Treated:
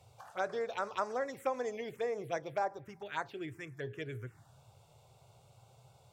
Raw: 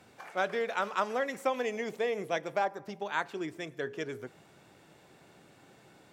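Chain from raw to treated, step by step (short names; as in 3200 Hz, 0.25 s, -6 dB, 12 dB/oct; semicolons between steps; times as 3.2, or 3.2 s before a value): resonant low shelf 150 Hz +7 dB, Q 3; envelope phaser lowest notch 260 Hz, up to 3100 Hz, full sweep at -28 dBFS; gain -2.5 dB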